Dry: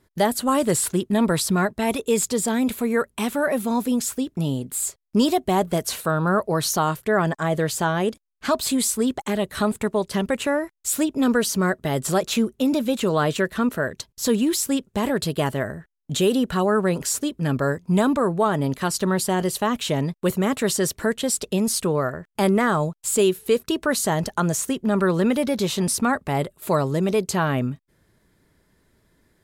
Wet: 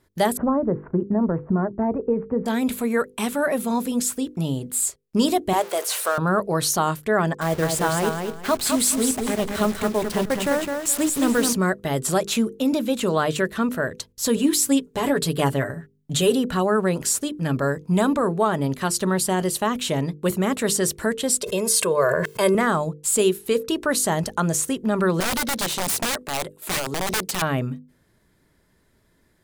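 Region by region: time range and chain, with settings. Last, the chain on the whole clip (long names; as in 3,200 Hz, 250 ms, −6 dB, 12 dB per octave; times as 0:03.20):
0:00.37–0:02.46: Gaussian smoothing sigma 7.6 samples + multiband upward and downward compressor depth 100%
0:05.53–0:06.18: converter with a step at zero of −28 dBFS + high-pass filter 430 Hz 24 dB per octave + de-essing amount 40%
0:07.41–0:11.53: hold until the input has moved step −28.5 dBFS + repeating echo 210 ms, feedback 23%, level −5 dB
0:14.36–0:16.31: mains-hum notches 50/100/150/200/250 Hz + comb filter 7 ms, depth 66%
0:21.42–0:22.55: high-pass filter 230 Hz + comb filter 1.9 ms, depth 78% + level that may fall only so fast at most 20 dB per second
0:25.20–0:27.42: high-pass filter 200 Hz + notch filter 1,200 Hz + wrap-around overflow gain 19 dB
whole clip: mains-hum notches 50/100/150/200/250/300/350/400/450/500 Hz; dynamic equaliser 9,100 Hz, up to +4 dB, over −41 dBFS, Q 1.6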